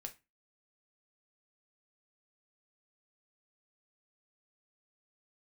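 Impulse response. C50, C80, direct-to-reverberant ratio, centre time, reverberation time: 16.0 dB, 24.0 dB, 4.5 dB, 7 ms, 0.25 s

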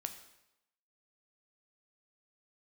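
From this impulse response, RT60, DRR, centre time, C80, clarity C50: 0.90 s, 6.5 dB, 13 ms, 12.5 dB, 10.5 dB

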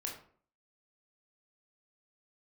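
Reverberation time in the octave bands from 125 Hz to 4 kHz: 0.50 s, 0.55 s, 0.55 s, 0.50 s, 0.40 s, 0.30 s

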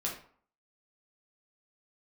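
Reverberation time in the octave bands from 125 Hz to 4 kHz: 0.45 s, 0.50 s, 0.50 s, 0.55 s, 0.40 s, 0.35 s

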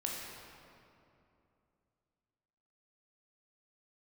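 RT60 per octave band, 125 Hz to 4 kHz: 3.3 s, 3.2 s, 2.9 s, 2.6 s, 2.1 s, 1.6 s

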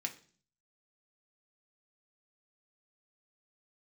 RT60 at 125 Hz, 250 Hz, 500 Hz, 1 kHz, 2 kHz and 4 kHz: 0.75 s, 0.65 s, 0.50 s, 0.40 s, 0.40 s, 0.50 s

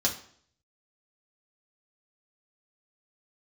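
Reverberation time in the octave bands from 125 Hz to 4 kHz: 0.70 s, 0.60 s, 0.60 s, 0.55 s, 0.50 s, 0.50 s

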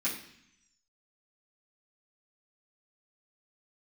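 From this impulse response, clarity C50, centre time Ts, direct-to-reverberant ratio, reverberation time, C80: 7.0 dB, 28 ms, -10.5 dB, 0.70 s, 10.5 dB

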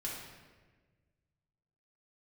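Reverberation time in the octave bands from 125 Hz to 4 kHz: 2.4 s, 1.8 s, 1.6 s, 1.2 s, 1.3 s, 0.95 s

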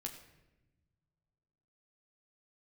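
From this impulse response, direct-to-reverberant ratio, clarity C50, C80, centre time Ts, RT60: 1.5 dB, 9.0 dB, 10.5 dB, 21 ms, 1.1 s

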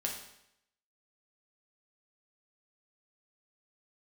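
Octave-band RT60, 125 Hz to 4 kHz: 0.80 s, 0.80 s, 0.80 s, 0.80 s, 0.80 s, 0.75 s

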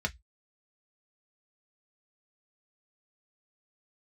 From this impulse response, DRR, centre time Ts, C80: 3.0 dB, 4 ms, 39.5 dB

